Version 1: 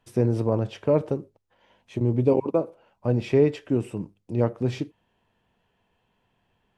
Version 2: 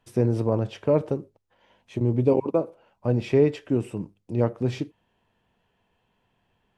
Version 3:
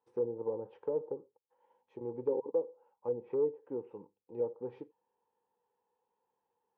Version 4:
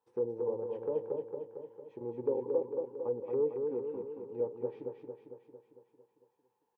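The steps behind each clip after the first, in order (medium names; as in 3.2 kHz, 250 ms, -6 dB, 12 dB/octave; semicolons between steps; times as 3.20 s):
no audible change
overload inside the chain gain 13 dB; two resonant band-passes 650 Hz, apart 0.81 oct; low-pass that closes with the level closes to 640 Hz, closed at -28.5 dBFS; trim -3 dB
feedback delay 226 ms, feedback 59%, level -4.5 dB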